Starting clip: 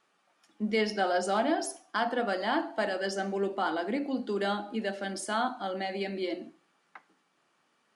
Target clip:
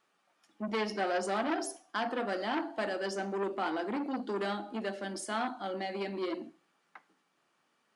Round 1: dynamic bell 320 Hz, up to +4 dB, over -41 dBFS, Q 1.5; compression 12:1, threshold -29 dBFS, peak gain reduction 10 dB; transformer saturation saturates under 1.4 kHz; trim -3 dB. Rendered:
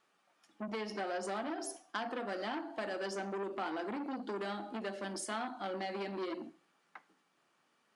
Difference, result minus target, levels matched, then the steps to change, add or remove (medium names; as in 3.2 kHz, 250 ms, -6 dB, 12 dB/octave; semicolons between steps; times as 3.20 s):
compression: peak gain reduction +10 dB
remove: compression 12:1, threshold -29 dBFS, peak gain reduction 10 dB